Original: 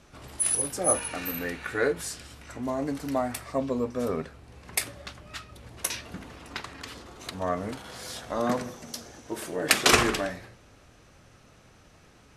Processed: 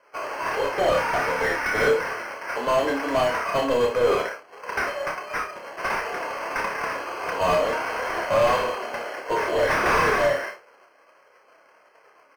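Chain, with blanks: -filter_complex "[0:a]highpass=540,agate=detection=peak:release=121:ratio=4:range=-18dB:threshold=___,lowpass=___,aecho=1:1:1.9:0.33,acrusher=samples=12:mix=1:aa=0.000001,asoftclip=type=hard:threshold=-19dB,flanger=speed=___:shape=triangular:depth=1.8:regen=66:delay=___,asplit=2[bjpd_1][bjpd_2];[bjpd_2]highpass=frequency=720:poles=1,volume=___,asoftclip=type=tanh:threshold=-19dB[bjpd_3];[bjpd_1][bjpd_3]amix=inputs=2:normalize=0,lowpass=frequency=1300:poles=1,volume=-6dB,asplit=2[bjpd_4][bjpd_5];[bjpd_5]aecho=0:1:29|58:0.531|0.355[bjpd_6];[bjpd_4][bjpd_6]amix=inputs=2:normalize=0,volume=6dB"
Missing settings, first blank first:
-53dB, 2500, 1.5, 1.9, 28dB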